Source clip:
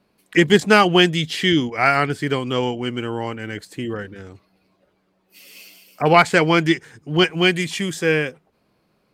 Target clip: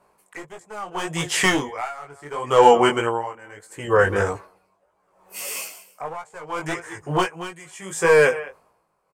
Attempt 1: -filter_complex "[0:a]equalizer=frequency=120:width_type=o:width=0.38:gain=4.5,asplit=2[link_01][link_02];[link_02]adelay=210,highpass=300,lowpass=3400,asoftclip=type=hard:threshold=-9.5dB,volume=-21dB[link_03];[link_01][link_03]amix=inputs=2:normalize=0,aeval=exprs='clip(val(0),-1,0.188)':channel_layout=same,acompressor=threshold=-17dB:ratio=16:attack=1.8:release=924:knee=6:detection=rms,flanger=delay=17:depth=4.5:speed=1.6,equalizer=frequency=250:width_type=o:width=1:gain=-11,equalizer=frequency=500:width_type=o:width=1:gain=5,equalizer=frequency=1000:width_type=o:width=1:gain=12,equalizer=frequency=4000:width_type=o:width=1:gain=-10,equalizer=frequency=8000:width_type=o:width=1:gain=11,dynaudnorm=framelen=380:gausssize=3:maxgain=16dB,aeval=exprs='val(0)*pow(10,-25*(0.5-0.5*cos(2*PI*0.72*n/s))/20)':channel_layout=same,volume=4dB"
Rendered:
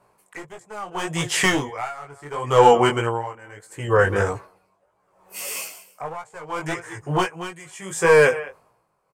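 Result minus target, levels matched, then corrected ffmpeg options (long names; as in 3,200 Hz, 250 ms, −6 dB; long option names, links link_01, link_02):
125 Hz band +3.5 dB
-filter_complex "[0:a]equalizer=frequency=120:width_type=o:width=0.38:gain=-4.5,asplit=2[link_01][link_02];[link_02]adelay=210,highpass=300,lowpass=3400,asoftclip=type=hard:threshold=-9.5dB,volume=-21dB[link_03];[link_01][link_03]amix=inputs=2:normalize=0,aeval=exprs='clip(val(0),-1,0.188)':channel_layout=same,acompressor=threshold=-17dB:ratio=16:attack=1.8:release=924:knee=6:detection=rms,flanger=delay=17:depth=4.5:speed=1.6,equalizer=frequency=250:width_type=o:width=1:gain=-11,equalizer=frequency=500:width_type=o:width=1:gain=5,equalizer=frequency=1000:width_type=o:width=1:gain=12,equalizer=frequency=4000:width_type=o:width=1:gain=-10,equalizer=frequency=8000:width_type=o:width=1:gain=11,dynaudnorm=framelen=380:gausssize=3:maxgain=16dB,aeval=exprs='val(0)*pow(10,-25*(0.5-0.5*cos(2*PI*0.72*n/s))/20)':channel_layout=same,volume=4dB"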